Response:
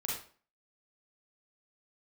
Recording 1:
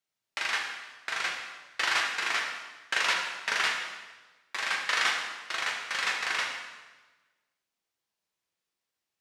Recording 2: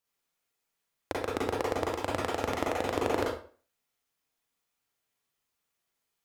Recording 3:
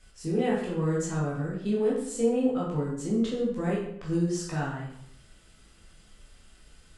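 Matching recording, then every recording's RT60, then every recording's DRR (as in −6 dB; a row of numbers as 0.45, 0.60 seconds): 2; 1.2, 0.40, 0.75 seconds; −1.0, −4.0, −6.5 decibels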